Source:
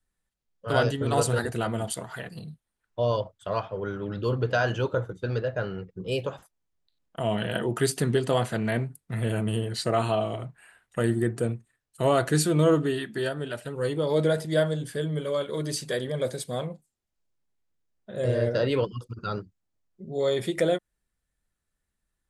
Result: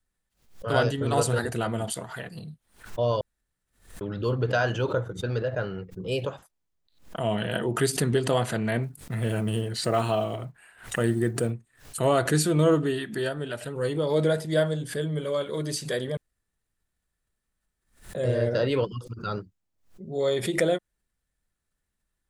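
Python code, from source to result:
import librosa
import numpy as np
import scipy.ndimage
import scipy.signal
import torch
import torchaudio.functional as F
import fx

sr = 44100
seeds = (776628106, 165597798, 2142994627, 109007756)

y = fx.block_float(x, sr, bits=7, at=(8.82, 11.5), fade=0.02)
y = fx.edit(y, sr, fx.room_tone_fill(start_s=3.21, length_s=0.8),
    fx.room_tone_fill(start_s=16.17, length_s=1.98), tone=tone)
y = fx.pre_swell(y, sr, db_per_s=140.0)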